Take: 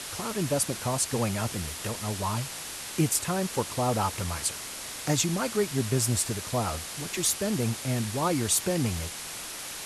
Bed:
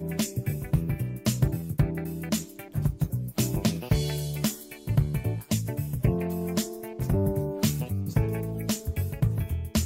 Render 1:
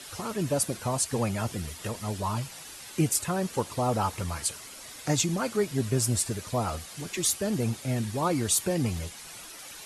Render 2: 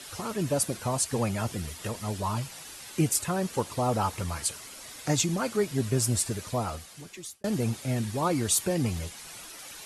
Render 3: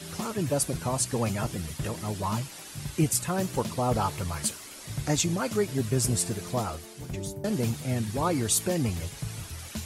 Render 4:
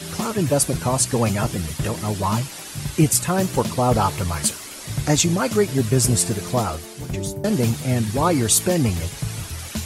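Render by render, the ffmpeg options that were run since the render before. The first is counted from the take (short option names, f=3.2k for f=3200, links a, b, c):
-af "afftdn=nr=10:nf=-39"
-filter_complex "[0:a]asplit=2[a][b];[a]atrim=end=7.44,asetpts=PTS-STARTPTS,afade=t=out:st=6.46:d=0.98[c];[b]atrim=start=7.44,asetpts=PTS-STARTPTS,afade=t=in:d=0.004:c=hsin[d];[c][d]concat=n=2:v=0:a=1"
-filter_complex "[1:a]volume=-11dB[a];[0:a][a]amix=inputs=2:normalize=0"
-af "volume=8dB"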